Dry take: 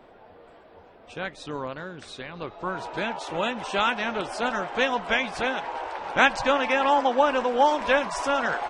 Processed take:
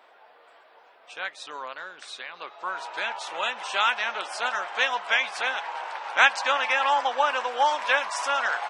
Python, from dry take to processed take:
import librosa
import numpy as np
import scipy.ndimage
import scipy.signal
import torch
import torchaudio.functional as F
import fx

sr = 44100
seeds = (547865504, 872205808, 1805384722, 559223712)

y = scipy.signal.sosfilt(scipy.signal.butter(2, 930.0, 'highpass', fs=sr, output='sos'), x)
y = y * 10.0 ** (2.5 / 20.0)